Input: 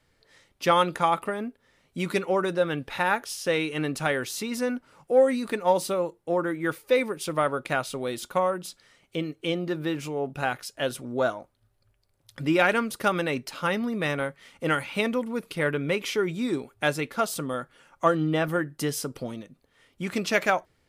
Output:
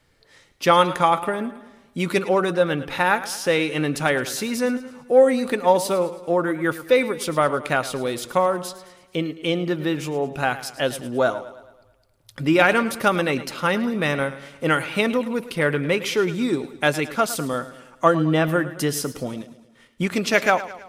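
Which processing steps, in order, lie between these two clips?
0:19.40–0:20.10: transient designer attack +5 dB, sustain −11 dB
feedback echo with a swinging delay time 108 ms, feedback 52%, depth 54 cents, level −15 dB
level +5 dB

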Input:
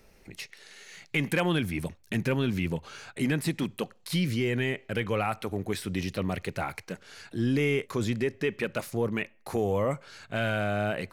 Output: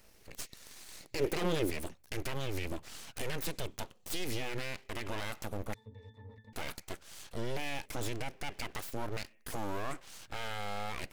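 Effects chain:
full-wave rectification
high-shelf EQ 4,200 Hz +7.5 dB
brickwall limiter −22 dBFS, peak gain reduction 10 dB
0:01.03–0:01.70: parametric band 380 Hz +13 dB 1.5 octaves
0:05.74–0:06.53: resonances in every octave A, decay 0.22 s
level −3 dB

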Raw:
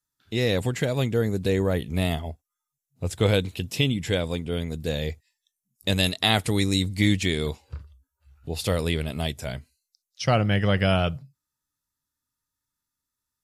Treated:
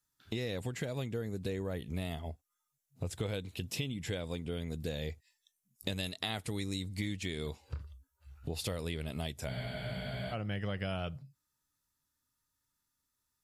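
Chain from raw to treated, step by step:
downward compressor 5 to 1, threshold −37 dBFS, peak gain reduction 19 dB
frozen spectrum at 0:09.53, 0.79 s
level +1.5 dB

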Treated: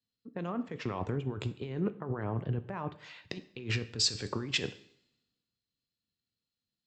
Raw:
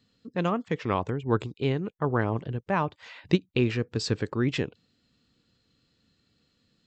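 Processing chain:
compressor whose output falls as the input rises −31 dBFS, ratio −1
coupled-rooms reverb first 0.72 s, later 1.9 s, from −17 dB, DRR 11 dB
multiband upward and downward expander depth 70%
level −4.5 dB

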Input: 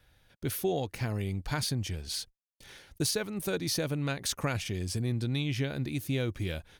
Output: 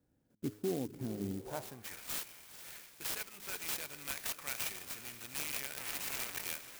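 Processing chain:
0:05.77–0:06.45: sign of each sample alone
brickwall limiter −22.5 dBFS, peak gain reduction 5 dB
high-shelf EQ 5,100 Hz +10.5 dB
feedback delay with all-pass diffusion 467 ms, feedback 46%, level −12 dB
band-pass filter sweep 260 Hz → 2,500 Hz, 0:01.30–0:02.00
hum removal 104.9 Hz, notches 4
converter with an unsteady clock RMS 0.085 ms
level +3 dB

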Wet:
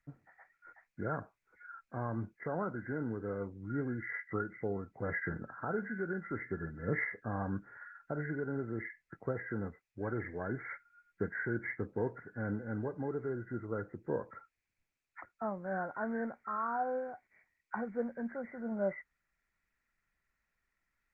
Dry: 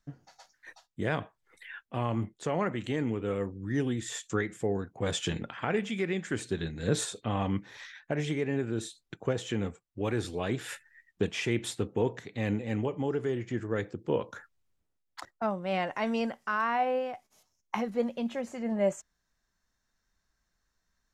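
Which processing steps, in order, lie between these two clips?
hearing-aid frequency compression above 1,300 Hz 4 to 1
level −6.5 dB
Opus 20 kbit/s 48,000 Hz

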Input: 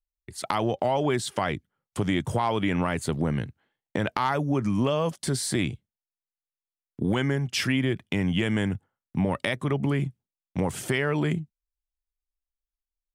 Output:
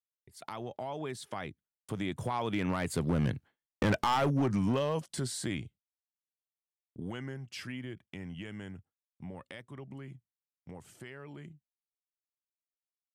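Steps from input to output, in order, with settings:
source passing by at 0:03.76, 13 m/s, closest 4.9 metres
noise gate with hold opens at −54 dBFS
hard clipping −27 dBFS, distortion −10 dB
level +4 dB

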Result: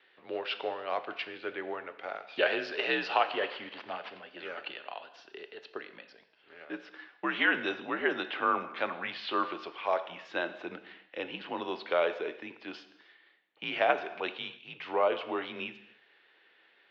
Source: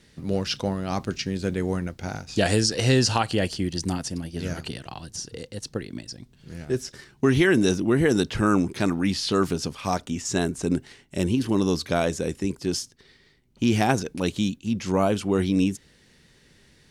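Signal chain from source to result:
0:03.32–0:04.20: variable-slope delta modulation 32 kbit/s
single-sideband voice off tune −73 Hz 550–3,400 Hz
reverb whose tail is shaped and stops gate 340 ms falling, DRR 10 dB
level −1.5 dB

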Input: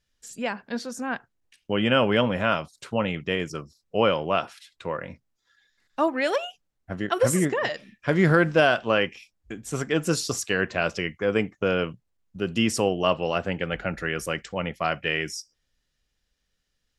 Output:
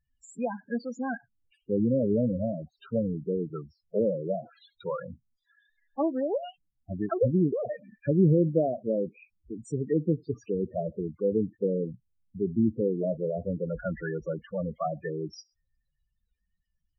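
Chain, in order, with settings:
treble cut that deepens with the level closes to 480 Hz, closed at −20 dBFS
spectral peaks only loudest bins 8

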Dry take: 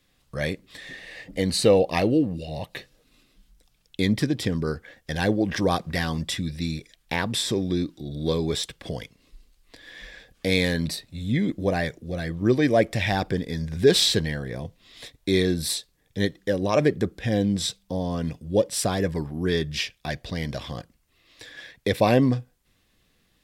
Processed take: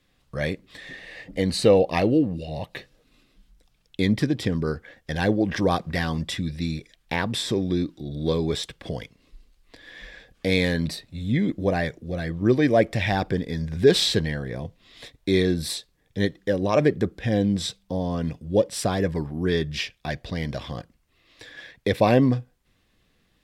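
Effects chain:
high-shelf EQ 5,100 Hz −7.5 dB
level +1 dB

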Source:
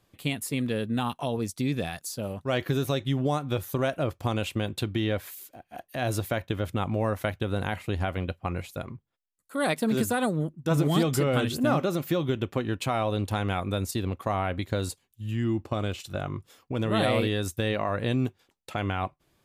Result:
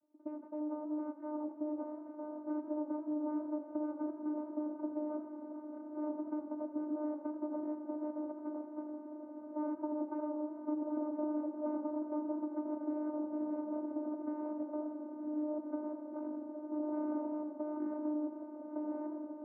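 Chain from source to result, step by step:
full-wave rectification
reversed playback
upward compression, threshold −36 dBFS
reversed playback
inverse Chebyshev low-pass filter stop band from 4,900 Hz, stop band 80 dB
on a send: feedback delay with all-pass diffusion 1,070 ms, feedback 73%, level −11 dB
on the sum: channel vocoder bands 16, saw 302 Hz
downward compressor, threshold −31 dBFS, peak gain reduction 9 dB
feedback echo with a swinging delay time 85 ms, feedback 60%, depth 100 cents, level −15.5 dB
level −2 dB

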